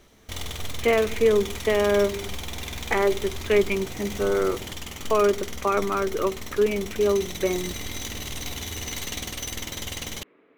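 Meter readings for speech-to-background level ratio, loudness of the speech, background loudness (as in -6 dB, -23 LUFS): 9.5 dB, -24.5 LUFS, -34.0 LUFS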